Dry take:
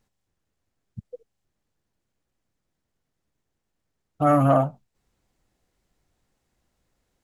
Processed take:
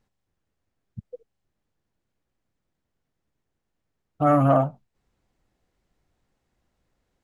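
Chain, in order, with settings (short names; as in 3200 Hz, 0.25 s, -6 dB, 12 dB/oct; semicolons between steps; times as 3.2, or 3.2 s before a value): high shelf 5400 Hz -9 dB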